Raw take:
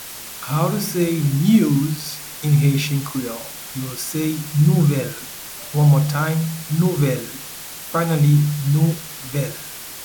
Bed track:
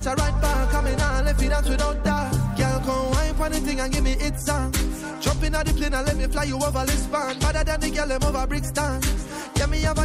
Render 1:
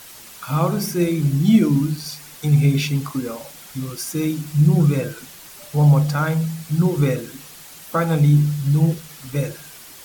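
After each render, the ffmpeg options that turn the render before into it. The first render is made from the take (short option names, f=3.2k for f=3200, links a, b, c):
-af "afftdn=nr=8:nf=-34"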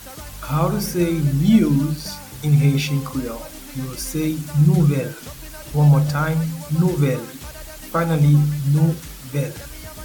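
-filter_complex "[1:a]volume=-15.5dB[a];[0:a][a]amix=inputs=2:normalize=0"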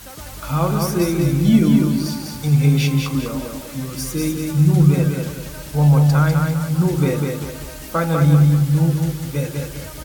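-af "aecho=1:1:198|396|594|792|990:0.631|0.246|0.096|0.0374|0.0146"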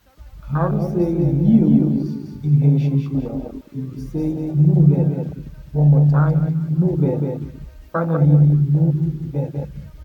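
-af "afwtdn=0.112,equalizer=f=10k:t=o:w=1.4:g=-13"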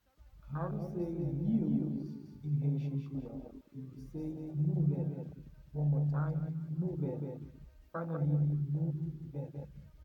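-af "volume=-18dB"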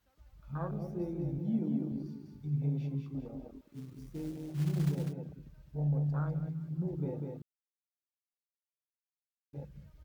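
-filter_complex "[0:a]asettb=1/sr,asplit=3[a][b][c];[a]atrim=end=1.384[d];[b]atrim=start=1.38:end=1.92,asetpts=PTS-STARTPTS,afade=t=in:d=0.004:c=qsin,afade=t=out:st=0.536:d=0.004:c=qsin,highpass=150[e];[c]atrim=start=1.916[f];[d][e]acrossfade=d=0.004:c1=hsin:c2=qsin[g];[g][f]acrossfade=d=0.004:c1=qsin:c2=hsin,asettb=1/sr,asplit=3[h][i][j];[h]atrim=end=3.634[k];[i]atrim=start=3.63:end=5.13,asetpts=PTS-STARTPTS,afade=t=in:d=0.004:c=qsin,afade=t=out:st=1.496:d=0.004:c=qsin,acrusher=bits=5:mode=log:mix=0:aa=0.000001[l];[j]atrim=start=5.126[m];[k][l]acrossfade=d=0.004:c1=hsin:c2=qsin[n];[n][m]acrossfade=d=0.004:c1=qsin:c2=hsin,asplit=3[o][p][q];[o]atrim=end=7.42,asetpts=PTS-STARTPTS,afade=t=out:st=7.416:d=0.004:c=hsin[r];[p]atrim=start=7.42:end=9.53,asetpts=PTS-STARTPTS,volume=0[s];[q]atrim=start=9.53,asetpts=PTS-STARTPTS,afade=t=in:d=0.004:c=hsin[t];[r][s][t]concat=n=3:v=0:a=1"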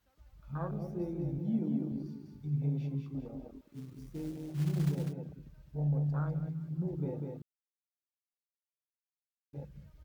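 -af anull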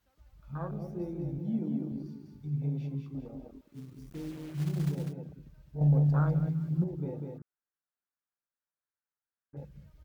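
-filter_complex "[0:a]asettb=1/sr,asplit=3[a][b][c];[a]atrim=end=4.104[d];[b]atrim=start=4.1:end=4.7,asetpts=PTS-STARTPTS,afade=t=in:d=0.004:c=qsin,afade=t=out:st=0.596:d=0.004:c=qsin,acrusher=bits=7:mix=0:aa=0.5[e];[c]atrim=start=4.696[f];[d][e]acrossfade=d=0.004:c1=hsin:c2=qsin[g];[g][f]acrossfade=d=0.004:c1=qsin:c2=hsin,asettb=1/sr,asplit=3[h][i][j];[h]atrim=end=7.384[k];[i]atrim=start=7.38:end=9.57,asetpts=PTS-STARTPTS,afade=t=in:d=0.004:c=qsin,afade=t=out:st=2.186:d=0.004:c=qsin,highshelf=f=2.2k:t=q:w=3:g=-12[l];[j]atrim=start=9.566[m];[k][l]acrossfade=d=0.004:c1=hsin:c2=qsin[n];[n][m]acrossfade=d=0.004:c1=qsin:c2=hsin,asplit=3[o][p][q];[o]atrim=end=5.812[r];[p]atrim=start=5.808:end=6.842,asetpts=PTS-STARTPTS,volume=7dB[s];[q]atrim=start=6.838[t];[r][s]acrossfade=d=0.004:c1=hsin:c2=hsin[u];[u][t]acrossfade=d=0.004:c1=hsin:c2=hsin"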